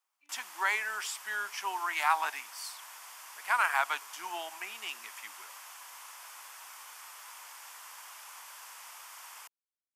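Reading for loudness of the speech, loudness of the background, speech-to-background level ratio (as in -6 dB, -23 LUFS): -33.0 LUFS, -46.5 LUFS, 13.5 dB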